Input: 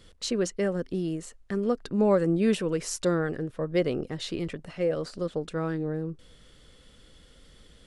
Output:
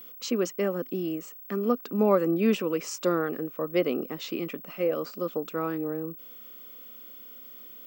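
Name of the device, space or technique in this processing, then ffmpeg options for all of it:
old television with a line whistle: -af "highpass=frequency=200:width=0.5412,highpass=frequency=200:width=1.3066,equalizer=frequency=250:width_type=q:width=4:gain=4,equalizer=frequency=1200:width_type=q:width=4:gain=7,equalizer=frequency=1700:width_type=q:width=4:gain=-5,equalizer=frequency=2500:width_type=q:width=4:gain=5,equalizer=frequency=4000:width_type=q:width=4:gain=-6,lowpass=frequency=7200:width=0.5412,lowpass=frequency=7200:width=1.3066,aeval=exprs='val(0)+0.00708*sin(2*PI*15734*n/s)':channel_layout=same"

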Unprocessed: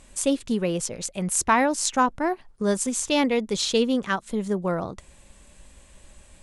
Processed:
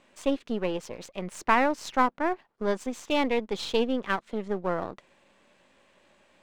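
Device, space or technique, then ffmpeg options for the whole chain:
crystal radio: -af "highpass=270,lowpass=3100,aeval=exprs='if(lt(val(0),0),0.447*val(0),val(0))':channel_layout=same"

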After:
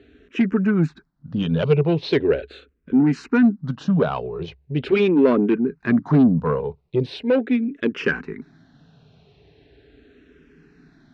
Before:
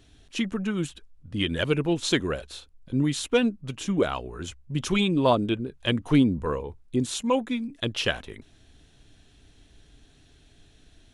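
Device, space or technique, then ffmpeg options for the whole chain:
barber-pole phaser into a guitar amplifier: -filter_complex "[0:a]asplit=2[link_01][link_02];[link_02]afreqshift=-0.4[link_03];[link_01][link_03]amix=inputs=2:normalize=1,asoftclip=type=tanh:threshold=-22.5dB,highpass=76,equalizer=frequency=92:width_type=q:width=4:gain=-7,equalizer=frequency=160:width_type=q:width=4:gain=9,equalizer=frequency=250:width_type=q:width=4:gain=6,equalizer=frequency=420:width_type=q:width=4:gain=10,equalizer=frequency=1500:width_type=q:width=4:gain=4,equalizer=frequency=3300:width_type=q:width=4:gain=-9,lowpass=frequency=4000:width=0.5412,lowpass=frequency=4000:width=1.3066,volume=7dB"

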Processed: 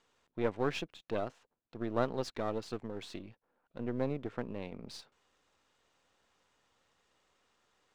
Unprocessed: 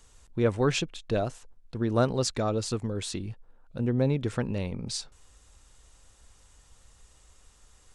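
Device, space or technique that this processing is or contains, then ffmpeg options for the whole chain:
crystal radio: -filter_complex "[0:a]asettb=1/sr,asplit=3[link_01][link_02][link_03];[link_01]atrim=end=4.104[link_04];[link_02]atrim=start=4.1:end=4.62,asetpts=PTS-STARTPTS,afade=type=in:duration=0.004:curve=qsin,afade=type=out:start_time=0.516:duration=0.004:curve=qsin,highshelf=frequency=2500:gain=-9.5[link_05];[link_03]atrim=start=4.616[link_06];[link_04][link_05]acrossfade=duration=0.004:curve1=hsin:curve2=qsin[link_07];[link_07][link_06]acrossfade=duration=0.004:curve1=qsin:curve2=hsin,highpass=230,lowpass=3500,aeval=exprs='if(lt(val(0),0),0.447*val(0),val(0))':channel_layout=same,volume=-4.5dB"

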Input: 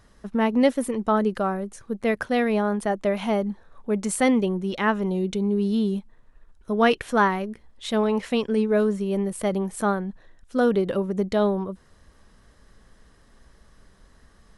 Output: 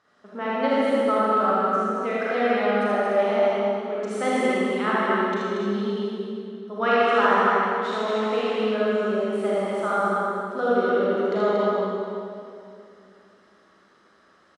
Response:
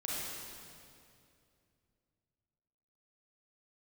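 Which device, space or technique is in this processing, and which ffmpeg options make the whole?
station announcement: -filter_complex "[0:a]highpass=320,lowpass=4800,equalizer=frequency=1300:width_type=o:width=0.21:gain=9.5,aecho=1:1:78.72|233.2:0.708|0.631[link_01];[1:a]atrim=start_sample=2205[link_02];[link_01][link_02]afir=irnorm=-1:irlink=0,volume=-4dB"

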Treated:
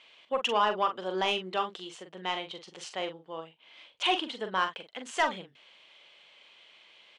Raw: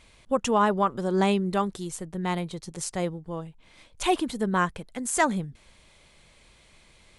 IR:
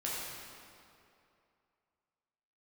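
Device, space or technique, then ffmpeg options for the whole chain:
intercom: -filter_complex "[0:a]highpass=490,lowpass=4300,lowpass=8400,equalizer=frequency=3000:width_type=o:width=0.44:gain=12,asoftclip=type=tanh:threshold=-14dB,asplit=2[link_01][link_02];[link_02]adelay=43,volume=-8dB[link_03];[link_01][link_03]amix=inputs=2:normalize=0,volume=-2dB"

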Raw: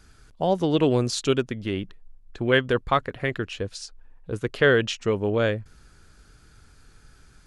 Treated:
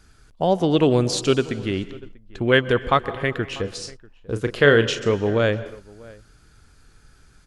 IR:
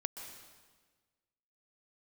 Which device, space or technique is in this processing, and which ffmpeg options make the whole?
keyed gated reverb: -filter_complex "[0:a]asettb=1/sr,asplit=3[link_01][link_02][link_03];[link_01]atrim=end=3.534[link_04];[link_02]atrim=start=3.53:end=5.14,asetpts=PTS-STARTPTS,afade=type=in:duration=0.004:curve=qsin,afade=type=out:start_time=1.606:duration=0.004:curve=qsin,asplit=2[link_05][link_06];[link_06]adelay=35,volume=-9dB[link_07];[link_05][link_07]amix=inputs=2:normalize=0,atrim=end_sample=71001[link_08];[link_03]atrim=start=5.136[link_09];[link_04][link_08]acrossfade=duration=0.004:curve1=hsin:curve2=qsin[link_10];[link_10][link_09]acrossfade=duration=0.004:curve1=qsin:curve2=hsin,asplit=2[link_11][link_12];[link_12]adelay=641.4,volume=-21dB,highshelf=frequency=4000:gain=-14.4[link_13];[link_11][link_13]amix=inputs=2:normalize=0,asplit=3[link_14][link_15][link_16];[1:a]atrim=start_sample=2205[link_17];[link_15][link_17]afir=irnorm=-1:irlink=0[link_18];[link_16]apad=whole_len=357672[link_19];[link_18][link_19]sidechaingate=range=-33dB:threshold=-40dB:ratio=16:detection=peak,volume=-5.5dB[link_20];[link_14][link_20]amix=inputs=2:normalize=0"

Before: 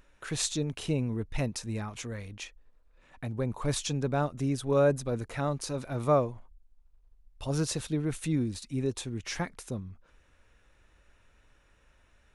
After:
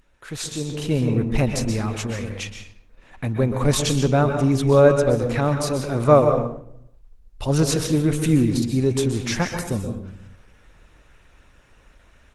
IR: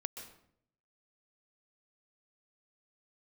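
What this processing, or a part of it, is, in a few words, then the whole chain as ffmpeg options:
speakerphone in a meeting room: -filter_complex "[0:a]asplit=3[link_01][link_02][link_03];[link_01]afade=type=out:start_time=4.41:duration=0.02[link_04];[link_02]lowpass=9300,afade=type=in:start_time=4.41:duration=0.02,afade=type=out:start_time=5.44:duration=0.02[link_05];[link_03]afade=type=in:start_time=5.44:duration=0.02[link_06];[link_04][link_05][link_06]amix=inputs=3:normalize=0[link_07];[1:a]atrim=start_sample=2205[link_08];[link_07][link_08]afir=irnorm=-1:irlink=0,dynaudnorm=framelen=560:gausssize=3:maxgain=10dB,volume=3dB" -ar 48000 -c:a libopus -b:a 16k

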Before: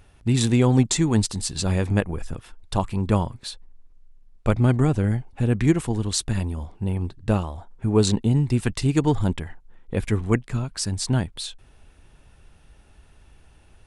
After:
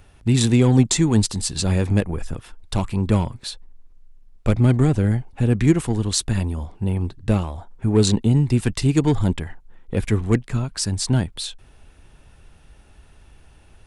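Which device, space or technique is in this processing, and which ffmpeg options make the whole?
one-band saturation: -filter_complex "[0:a]acrossover=split=450|2500[link_01][link_02][link_03];[link_02]asoftclip=type=tanh:threshold=-27.5dB[link_04];[link_01][link_04][link_03]amix=inputs=3:normalize=0,volume=3dB"

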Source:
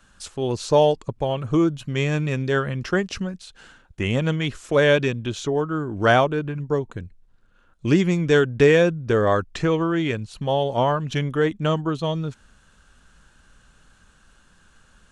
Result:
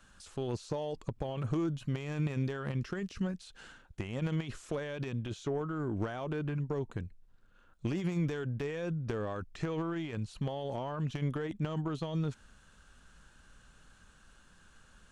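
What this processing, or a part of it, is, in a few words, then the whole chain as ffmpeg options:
de-esser from a sidechain: -filter_complex "[0:a]asettb=1/sr,asplit=3[link_01][link_02][link_03];[link_01]atrim=end=2.774[link_04];[link_02]atrim=start=2.77:end=3.23,asetpts=PTS-STARTPTS,afade=type=in:duration=0.004:curve=qsin,afade=type=out:start_time=0.456:duration=0.004:curve=qsin,equalizer=frequency=770:width_type=o:width=0.8:gain=-8[link_05];[link_03]atrim=start=3.226[link_06];[link_04][link_05]acrossfade=duration=0.004:curve1=hsin:curve2=qsin[link_07];[link_07][link_06]acrossfade=duration=0.004:curve1=qsin:curve2=hsin,asplit=2[link_08][link_09];[link_09]highpass=frequency=5600:poles=1,apad=whole_len=666387[link_10];[link_08][link_10]sidechaincompress=threshold=-47dB:ratio=6:attack=1:release=24,volume=-4.5dB"

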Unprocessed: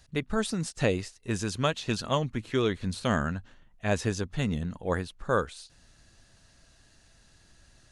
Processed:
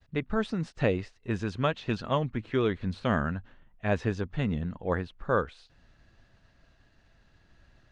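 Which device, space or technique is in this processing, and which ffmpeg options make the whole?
hearing-loss simulation: -af "lowpass=2700,agate=range=-33dB:threshold=-58dB:ratio=3:detection=peak"

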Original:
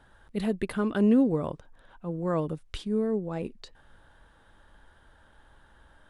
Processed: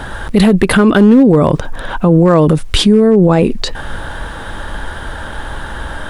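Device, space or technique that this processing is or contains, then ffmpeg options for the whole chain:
loud club master: -af "acompressor=threshold=-27dB:ratio=3,asoftclip=type=hard:threshold=-23.5dB,alimiter=level_in=34.5dB:limit=-1dB:release=50:level=0:latency=1,volume=-1dB"

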